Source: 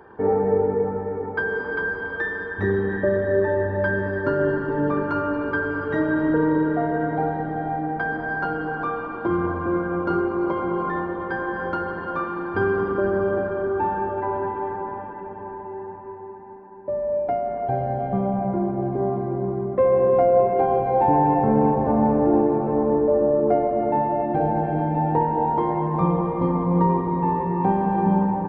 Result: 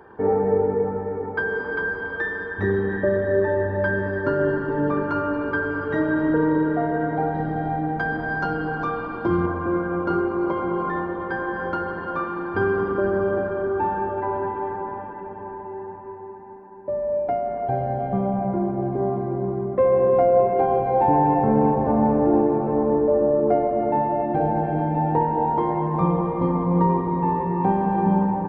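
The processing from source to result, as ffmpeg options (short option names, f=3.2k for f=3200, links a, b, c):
-filter_complex "[0:a]asettb=1/sr,asplit=3[a][b][c];[a]atrim=end=7.344[d];[b]atrim=start=7.34:end=9.46,asetpts=PTS-STARTPTS,afade=t=in:d=0.004:c=qsin,afade=t=out:st=2.116:d=0.004:c=qsin,bass=f=250:g=5,treble=f=4k:g=13[e];[c]atrim=start=9.456[f];[d][e]acrossfade=d=0.004:c1=hsin:c2=qsin[g];[g][f]acrossfade=d=0.004:c1=qsin:c2=hsin"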